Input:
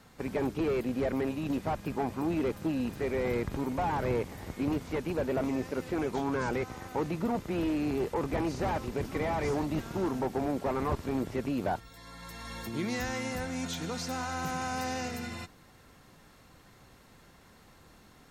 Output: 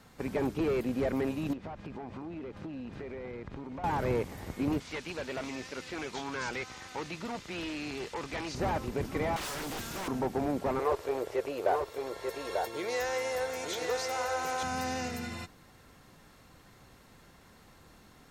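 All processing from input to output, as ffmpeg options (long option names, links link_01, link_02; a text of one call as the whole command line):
ffmpeg -i in.wav -filter_complex "[0:a]asettb=1/sr,asplit=3[link_01][link_02][link_03];[link_01]atrim=end=1.534[link_04];[link_02]atrim=start=1.53:end=3.84,asetpts=PTS-STARTPTS,afade=type=in:duration=0.004:curve=qsin,afade=type=out:start_time=2.306:duration=0.004:curve=qsin,lowpass=3900,acompressor=threshold=-37dB:ratio=12:attack=3.2:release=140:knee=1:detection=peak[link_05];[link_03]atrim=start=3.836[link_06];[link_04][link_05]acrossfade=duration=0.004:curve1=hsin:curve2=qsin[link_07];[link_07][link_06]acrossfade=duration=0.004:curve1=qsin:curve2=hsin,asettb=1/sr,asplit=3[link_08][link_09][link_10];[link_08]atrim=end=4.804[link_11];[link_09]atrim=start=4.8:end=8.55,asetpts=PTS-STARTPTS,afade=type=in:duration=0.004:curve=qsin,afade=type=out:start_time=3.746:duration=0.004:curve=qsin,lowpass=5600,tiltshelf=frequency=1500:gain=-10[link_12];[link_10]atrim=start=8.546[link_13];[link_11][link_12]acrossfade=duration=0.004:curve1=hsin:curve2=qsin[link_14];[link_14][link_13]acrossfade=duration=0.004:curve1=qsin:curve2=hsin,asettb=1/sr,asplit=3[link_15][link_16][link_17];[link_15]atrim=end=9.364[link_18];[link_16]atrim=start=9.36:end=10.08,asetpts=PTS-STARTPTS,afade=type=in:duration=0.004:curve=qsin,afade=type=out:start_time=0.716:duration=0.004:curve=qsin,highshelf=frequency=2200:gain=11.5,aeval=exprs='0.0237*(abs(mod(val(0)/0.0237+3,4)-2)-1)':channel_layout=same[link_19];[link_17]atrim=start=10.076[link_20];[link_18][link_19]acrossfade=duration=0.004:curve1=hsin:curve2=qsin[link_21];[link_21][link_20]acrossfade=duration=0.004:curve1=qsin:curve2=hsin,asettb=1/sr,asplit=3[link_22][link_23][link_24];[link_22]atrim=end=10.794[link_25];[link_23]atrim=start=10.79:end=14.63,asetpts=PTS-STARTPTS,afade=type=in:duration=0.004:curve=qsin,afade=type=out:start_time=3.836:duration=0.004:curve=qsin,lowshelf=frequency=320:width_type=q:width=3:gain=-12,aecho=1:1:892:0.596,atrim=end_sample=169344[link_26];[link_24]atrim=start=14.626[link_27];[link_25][link_26]acrossfade=duration=0.004:curve1=hsin:curve2=qsin[link_28];[link_28][link_27]acrossfade=duration=0.004:curve1=qsin:curve2=hsin" out.wav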